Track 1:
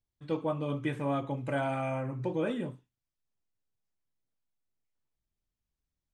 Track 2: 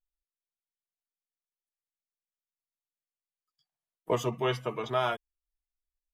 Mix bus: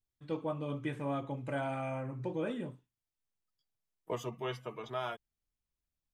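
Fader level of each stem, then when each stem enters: −4.5, −9.0 decibels; 0.00, 0.00 seconds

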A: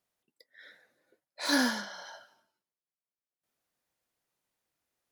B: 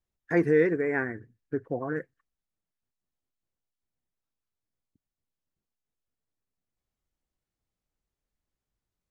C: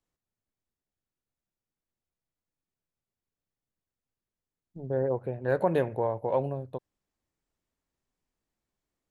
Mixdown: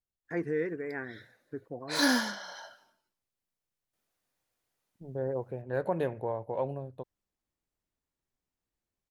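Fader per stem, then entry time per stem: +1.0, −9.5, −5.0 decibels; 0.50, 0.00, 0.25 seconds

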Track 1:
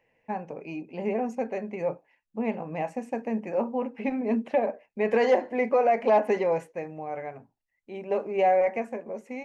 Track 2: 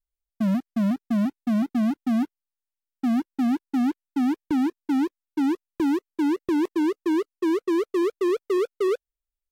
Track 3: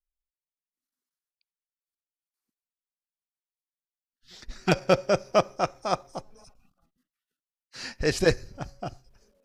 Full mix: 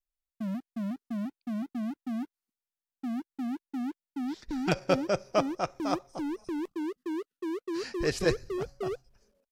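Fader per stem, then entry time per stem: muted, −11.0 dB, −5.0 dB; muted, 0.00 s, 0.00 s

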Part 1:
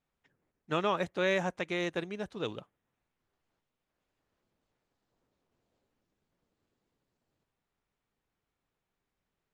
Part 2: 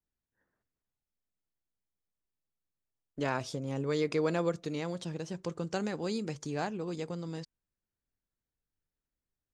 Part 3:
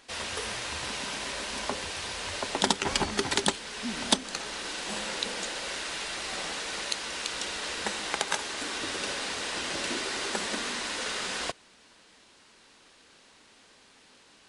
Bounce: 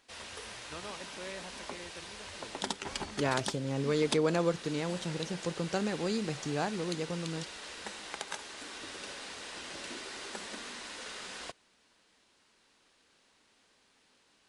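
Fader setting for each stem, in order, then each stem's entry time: −15.5, +1.5, −10.5 decibels; 0.00, 0.00, 0.00 seconds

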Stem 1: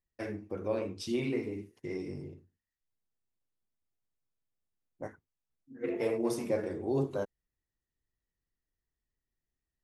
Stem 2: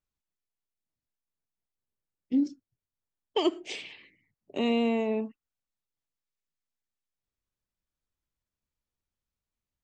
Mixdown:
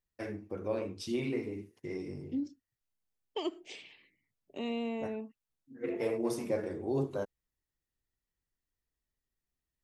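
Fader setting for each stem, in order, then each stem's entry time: −1.5, −9.5 decibels; 0.00, 0.00 seconds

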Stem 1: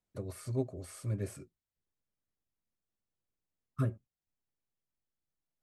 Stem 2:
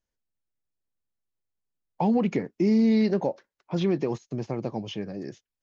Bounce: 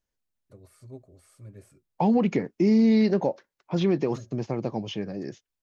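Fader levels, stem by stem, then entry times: −10.5, +1.5 decibels; 0.35, 0.00 seconds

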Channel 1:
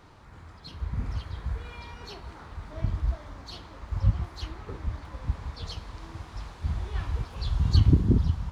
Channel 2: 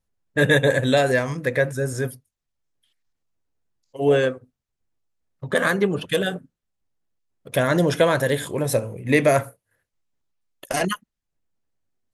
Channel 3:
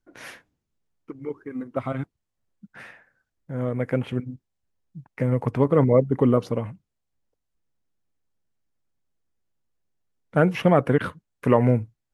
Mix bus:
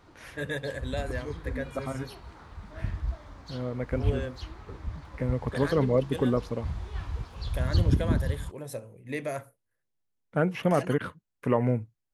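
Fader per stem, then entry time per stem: −4.0, −16.0, −6.5 decibels; 0.00, 0.00, 0.00 seconds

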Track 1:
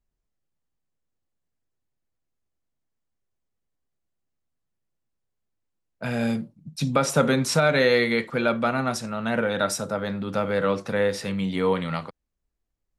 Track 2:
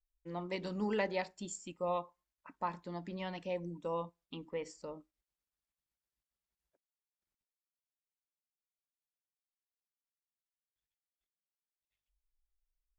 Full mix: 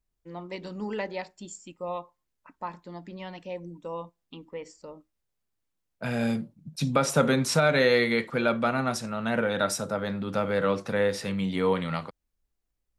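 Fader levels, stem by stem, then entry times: −2.0, +1.5 decibels; 0.00, 0.00 seconds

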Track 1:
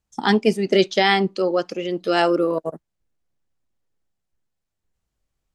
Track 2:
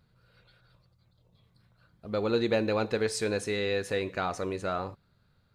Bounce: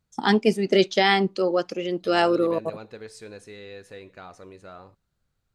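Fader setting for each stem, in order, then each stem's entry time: −2.0, −12.0 decibels; 0.00, 0.00 seconds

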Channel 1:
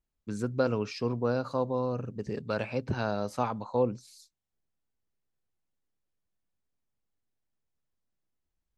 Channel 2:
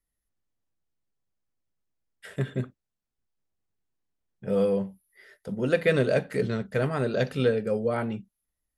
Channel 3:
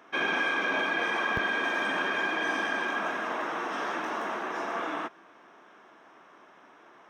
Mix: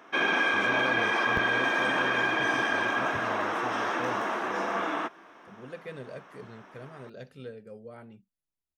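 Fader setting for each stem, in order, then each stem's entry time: −10.0, −18.5, +2.5 decibels; 0.25, 0.00, 0.00 seconds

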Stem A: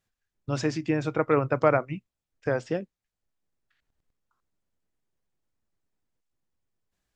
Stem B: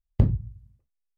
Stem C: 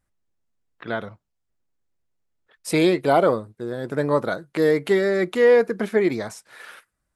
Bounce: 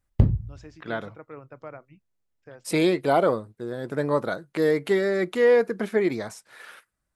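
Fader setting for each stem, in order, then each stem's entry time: −19.5, +1.5, −3.0 decibels; 0.00, 0.00, 0.00 seconds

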